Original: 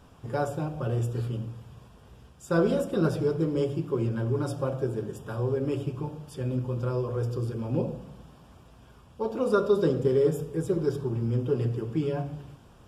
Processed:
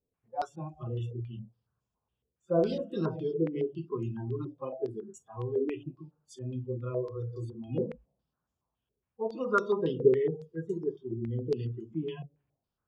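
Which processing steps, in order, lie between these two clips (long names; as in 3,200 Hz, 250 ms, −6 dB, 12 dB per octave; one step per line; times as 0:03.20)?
noise reduction from a noise print of the clip's start 29 dB
low-pass on a step sequencer 7.2 Hz 450–6,900 Hz
level −6.5 dB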